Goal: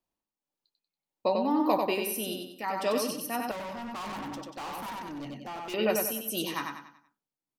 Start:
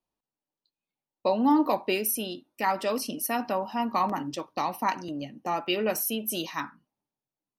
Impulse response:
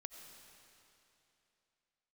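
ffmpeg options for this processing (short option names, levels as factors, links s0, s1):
-filter_complex "[0:a]tremolo=f=1.7:d=0.6,aecho=1:1:94|188|282|376|470:0.631|0.252|0.101|0.0404|0.0162,asettb=1/sr,asplit=3[s0][s1][s2];[s0]atrim=end=3.514[s3];[s1]atrim=start=3.51:end=5.74,asetpts=PTS-STARTPTS,afade=t=in:d=0.004:c=qsin,afade=t=out:st=2.226:d=0.004:c=qsin,volume=63.1,asoftclip=hard,volume=0.0158[s4];[s2]atrim=start=5.736[s5];[s3][s4]acrossfade=d=0.004:c1=hsin:c2=qsin[s6];[s6][s5]acrossfade=d=0.004:c1=qsin:c2=hsin"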